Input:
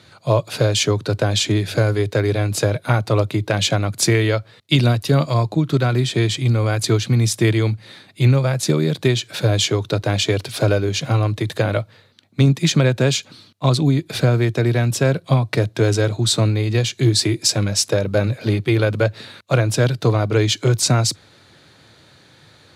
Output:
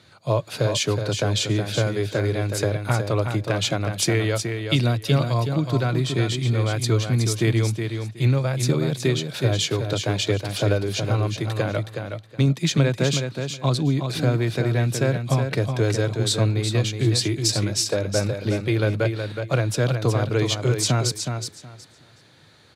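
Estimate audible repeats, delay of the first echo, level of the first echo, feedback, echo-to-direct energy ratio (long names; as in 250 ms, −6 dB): 2, 369 ms, −6.5 dB, 19%, −6.5 dB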